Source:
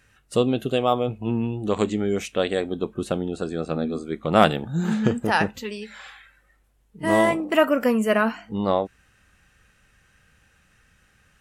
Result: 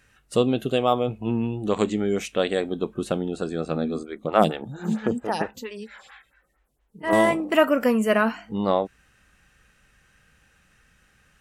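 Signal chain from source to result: bell 91 Hz -7 dB 0.33 oct; 4.03–7.13 photocell phaser 4.4 Hz

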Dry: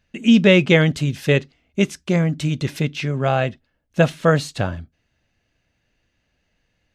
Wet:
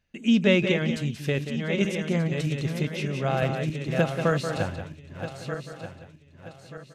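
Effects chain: regenerating reverse delay 0.616 s, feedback 59%, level -8 dB; 0.71–1.38 compressor, threshold -14 dBFS, peak gain reduction 6.5 dB; echo 0.182 s -10 dB; 3.42–4.57 three-band squash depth 70%; gain -7.5 dB

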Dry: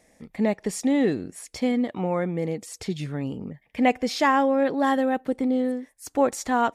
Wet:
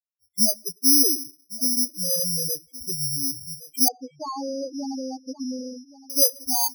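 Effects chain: spectral noise reduction 28 dB; gate with hold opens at -46 dBFS; low shelf 130 Hz +4.5 dB; echo 1.12 s -19.5 dB; reverb, pre-delay 3 ms, DRR 19 dB; careless resampling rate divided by 8×, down filtered, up zero stuff; loudest bins only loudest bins 16; 3.88–6.1 tape spacing loss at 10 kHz 44 dB; mismatched tape noise reduction encoder only; gain -4 dB

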